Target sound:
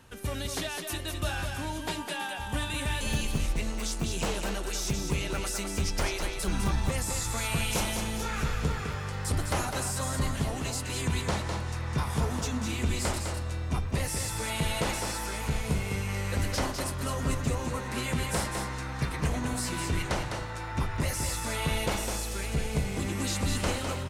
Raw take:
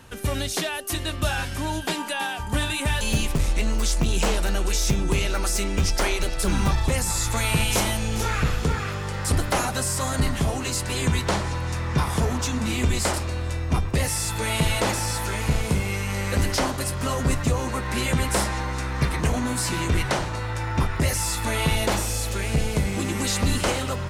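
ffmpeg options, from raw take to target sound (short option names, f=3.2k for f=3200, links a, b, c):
-af "aecho=1:1:205:0.531,volume=-7.5dB"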